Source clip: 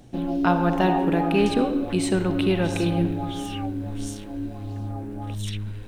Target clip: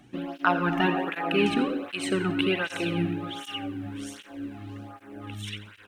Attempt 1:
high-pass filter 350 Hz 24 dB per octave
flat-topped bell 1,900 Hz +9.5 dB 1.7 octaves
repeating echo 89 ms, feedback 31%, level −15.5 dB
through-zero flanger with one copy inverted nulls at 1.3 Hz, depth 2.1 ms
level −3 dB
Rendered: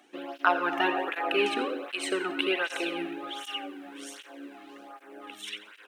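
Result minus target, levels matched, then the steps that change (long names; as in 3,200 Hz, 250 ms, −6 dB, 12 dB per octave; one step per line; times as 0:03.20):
250 Hz band −6.0 dB
remove: high-pass filter 350 Hz 24 dB per octave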